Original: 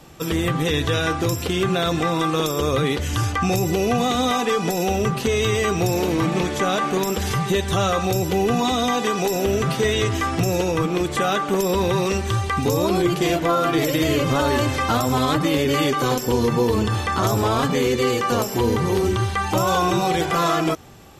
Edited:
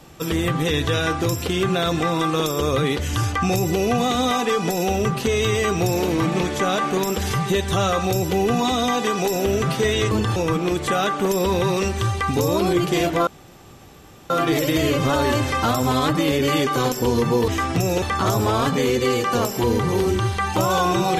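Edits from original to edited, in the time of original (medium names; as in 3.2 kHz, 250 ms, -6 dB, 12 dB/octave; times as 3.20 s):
10.11–10.65 s: swap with 16.74–16.99 s
13.56 s: insert room tone 1.03 s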